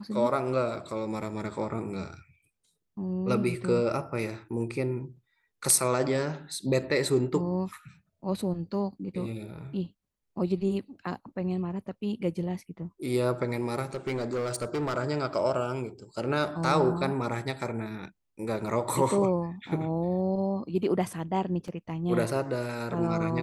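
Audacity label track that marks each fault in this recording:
13.850000	14.980000	clipped -26 dBFS
21.680000	21.680000	gap 2.5 ms

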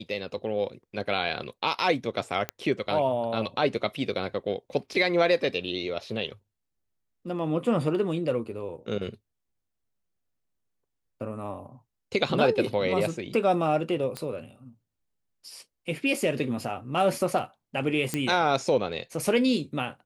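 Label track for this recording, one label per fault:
2.490000	2.490000	pop -13 dBFS
14.170000	14.170000	pop -18 dBFS
18.140000	18.140000	pop -12 dBFS

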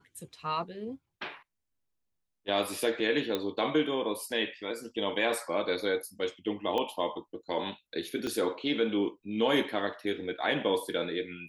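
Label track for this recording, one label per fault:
3.350000	3.350000	pop -17 dBFS
6.780000	6.780000	pop -19 dBFS
8.270000	8.270000	pop -21 dBFS

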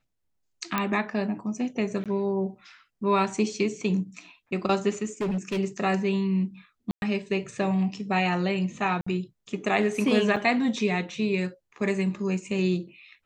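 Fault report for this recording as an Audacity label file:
0.780000	0.780000	pop -11 dBFS
2.040000	2.060000	gap 17 ms
5.210000	5.590000	clipped -24 dBFS
6.910000	7.020000	gap 0.111 s
9.010000	9.060000	gap 55 ms
10.360000	10.360000	gap 4.8 ms

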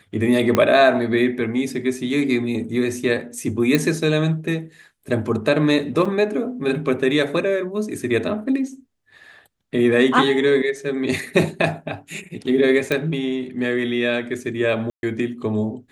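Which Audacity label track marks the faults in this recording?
0.550000	0.550000	pop -4 dBFS
3.750000	3.750000	pop -5 dBFS
6.050000	6.050000	gap 4.1 ms
12.920000	12.920000	pop -8 dBFS
14.900000	15.030000	gap 0.131 s

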